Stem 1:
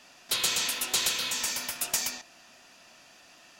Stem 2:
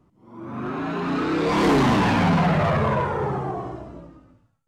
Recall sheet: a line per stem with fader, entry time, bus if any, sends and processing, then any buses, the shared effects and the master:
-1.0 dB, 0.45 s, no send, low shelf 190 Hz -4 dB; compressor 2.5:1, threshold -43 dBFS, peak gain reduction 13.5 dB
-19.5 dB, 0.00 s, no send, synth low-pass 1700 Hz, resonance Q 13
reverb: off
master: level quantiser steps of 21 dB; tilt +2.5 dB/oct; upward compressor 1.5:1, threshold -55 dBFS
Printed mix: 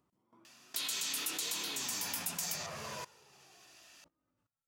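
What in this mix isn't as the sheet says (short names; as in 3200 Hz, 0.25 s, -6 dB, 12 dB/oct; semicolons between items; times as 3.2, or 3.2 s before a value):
stem 1 -1.0 dB -> +5.5 dB; stem 2: missing synth low-pass 1700 Hz, resonance Q 13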